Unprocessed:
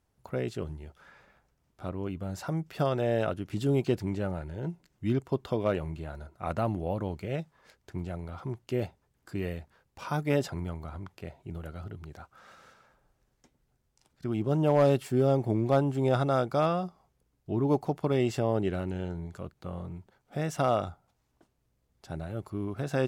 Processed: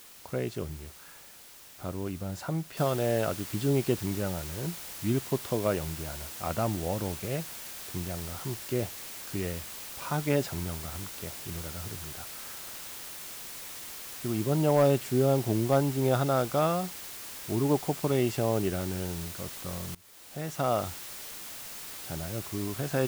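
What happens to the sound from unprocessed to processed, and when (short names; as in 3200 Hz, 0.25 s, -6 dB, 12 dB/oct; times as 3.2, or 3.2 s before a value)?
2.77 noise floor step -51 dB -42 dB
19.95–20.85 fade in, from -21 dB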